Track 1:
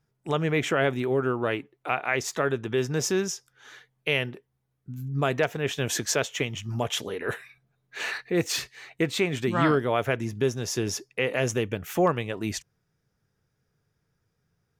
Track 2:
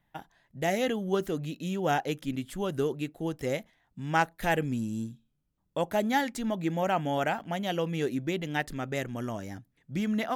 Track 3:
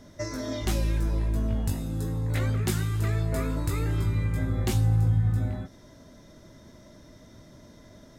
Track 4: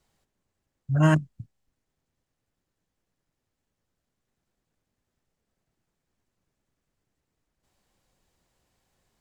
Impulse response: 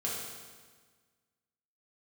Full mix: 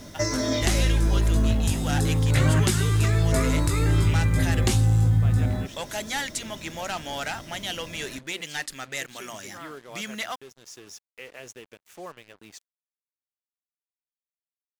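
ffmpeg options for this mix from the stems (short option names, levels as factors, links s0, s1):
-filter_complex "[0:a]highpass=f=350:p=1,volume=0.15[s0];[1:a]tiltshelf=f=790:g=-10,bandreject=f=60:t=h:w=6,bandreject=f=120:t=h:w=6,bandreject=f=180:t=h:w=6,bandreject=f=240:t=h:w=6,bandreject=f=300:t=h:w=6,asoftclip=type=tanh:threshold=0.0631,volume=0.422,asplit=2[s1][s2];[2:a]volume=1.12[s3];[3:a]acompressor=threshold=0.0501:ratio=3,adelay=1450,volume=1.06[s4];[s2]apad=whole_len=652582[s5];[s0][s5]sidechaincompress=threshold=0.0112:ratio=12:attack=21:release=1120[s6];[s1][s3]amix=inputs=2:normalize=0,acontrast=45,alimiter=limit=0.237:level=0:latency=1:release=242,volume=1[s7];[s6][s4][s7]amix=inputs=3:normalize=0,lowpass=f=11000:w=0.5412,lowpass=f=11000:w=1.3066,highshelf=f=2800:g=6,acrusher=bits=7:mix=0:aa=0.5"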